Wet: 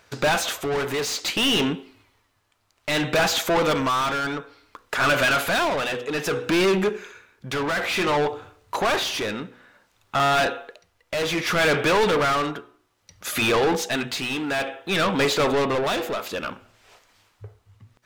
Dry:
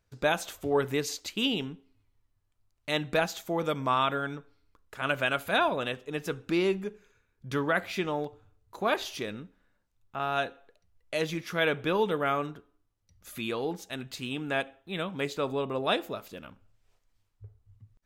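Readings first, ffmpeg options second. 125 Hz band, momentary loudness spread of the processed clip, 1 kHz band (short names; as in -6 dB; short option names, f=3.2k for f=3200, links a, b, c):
+6.5 dB, 11 LU, +7.5 dB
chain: -filter_complex "[0:a]bandreject=f=122.1:t=h:w=4,bandreject=f=244.2:t=h:w=4,bandreject=f=366.3:t=h:w=4,bandreject=f=488.4:t=h:w=4,asplit=2[a][b];[b]highpass=f=720:p=1,volume=33dB,asoftclip=type=tanh:threshold=-12dB[c];[a][c]amix=inputs=2:normalize=0,lowpass=f=4.2k:p=1,volume=-6dB,tremolo=f=0.59:d=0.5"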